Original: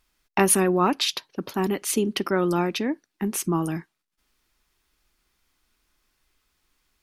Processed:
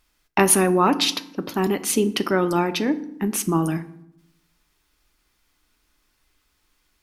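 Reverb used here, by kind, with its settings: FDN reverb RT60 0.74 s, low-frequency decay 1.5×, high-frequency decay 0.65×, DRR 11 dB; trim +3 dB

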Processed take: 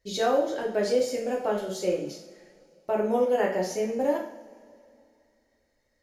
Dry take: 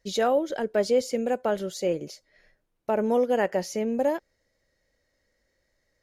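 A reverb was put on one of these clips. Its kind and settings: two-slope reverb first 0.52 s, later 2.7 s, from -21 dB, DRR -2.5 dB; trim -5 dB

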